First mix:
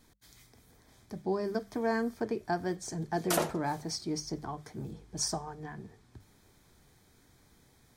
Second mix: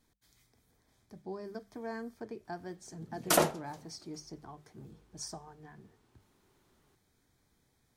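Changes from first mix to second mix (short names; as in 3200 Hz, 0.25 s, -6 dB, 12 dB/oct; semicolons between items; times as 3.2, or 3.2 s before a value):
speech -10.0 dB; background +4.0 dB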